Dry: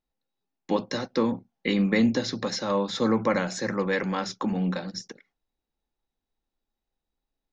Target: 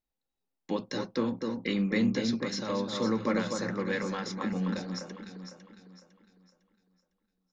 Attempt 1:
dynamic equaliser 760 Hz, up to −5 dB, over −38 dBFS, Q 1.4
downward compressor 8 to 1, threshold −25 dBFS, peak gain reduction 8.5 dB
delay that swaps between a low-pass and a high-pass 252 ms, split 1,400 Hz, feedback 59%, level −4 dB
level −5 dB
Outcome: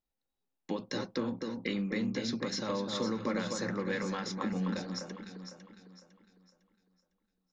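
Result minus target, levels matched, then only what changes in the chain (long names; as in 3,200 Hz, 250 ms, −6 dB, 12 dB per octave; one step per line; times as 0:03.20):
downward compressor: peak gain reduction +8.5 dB
remove: downward compressor 8 to 1, threshold −25 dBFS, peak gain reduction 8.5 dB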